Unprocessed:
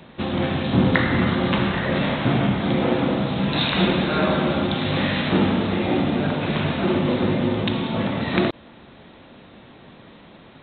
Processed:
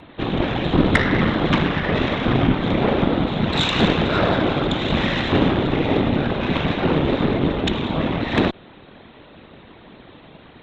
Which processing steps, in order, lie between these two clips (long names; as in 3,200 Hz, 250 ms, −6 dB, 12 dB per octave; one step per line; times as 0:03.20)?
random phases in short frames
harmonic generator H 6 −21 dB, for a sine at −2 dBFS
level +1.5 dB